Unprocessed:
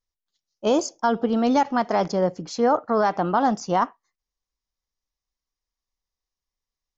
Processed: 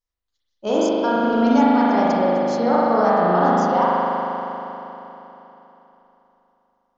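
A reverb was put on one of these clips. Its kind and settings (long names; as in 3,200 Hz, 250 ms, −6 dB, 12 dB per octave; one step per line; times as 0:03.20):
spring reverb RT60 3.5 s, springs 39 ms, chirp 25 ms, DRR −8 dB
level −4 dB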